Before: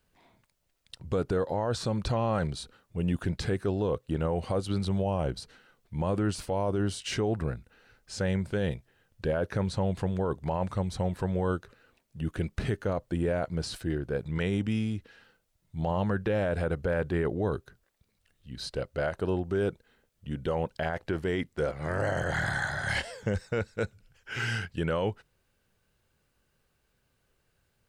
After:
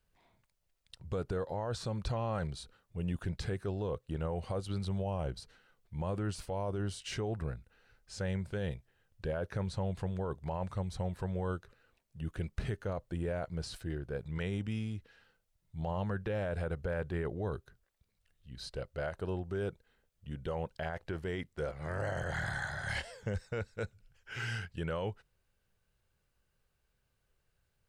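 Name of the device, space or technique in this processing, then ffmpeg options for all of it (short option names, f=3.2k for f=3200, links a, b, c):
low shelf boost with a cut just above: -af "lowshelf=f=68:g=7.5,equalizer=f=270:t=o:w=0.78:g=-4.5,volume=-7dB"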